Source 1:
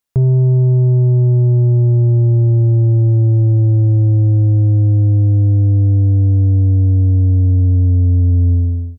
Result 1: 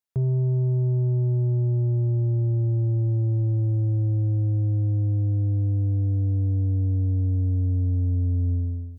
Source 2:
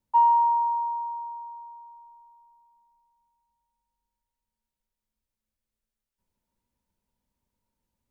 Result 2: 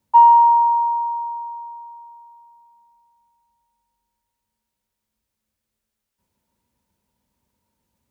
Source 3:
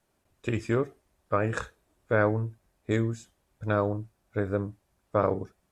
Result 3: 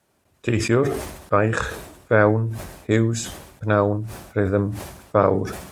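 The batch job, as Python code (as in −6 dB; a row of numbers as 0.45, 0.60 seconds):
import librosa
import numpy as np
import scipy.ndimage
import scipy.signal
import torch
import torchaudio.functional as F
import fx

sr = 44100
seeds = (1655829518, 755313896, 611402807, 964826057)

y = scipy.signal.sosfilt(scipy.signal.butter(2, 58.0, 'highpass', fs=sr, output='sos'), x)
y = fx.sustainer(y, sr, db_per_s=63.0)
y = y * 10.0 ** (-22 / 20.0) / np.sqrt(np.mean(np.square(y)))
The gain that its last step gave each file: −11.0, +9.0, +7.5 decibels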